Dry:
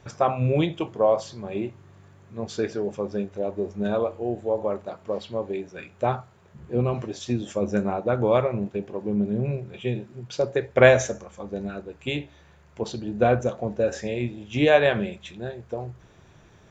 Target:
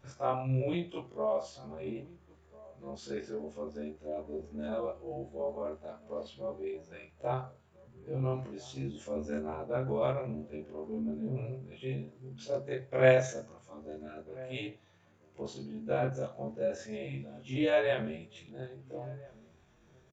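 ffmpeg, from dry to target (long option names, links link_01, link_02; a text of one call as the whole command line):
ffmpeg -i in.wav -filter_complex "[0:a]afftfilt=real='re':imag='-im':win_size=2048:overlap=0.75,atempo=0.83,asplit=2[link_01][link_02];[link_02]adelay=1341,volume=-21dB,highshelf=frequency=4000:gain=-30.2[link_03];[link_01][link_03]amix=inputs=2:normalize=0,volume=-6.5dB" out.wav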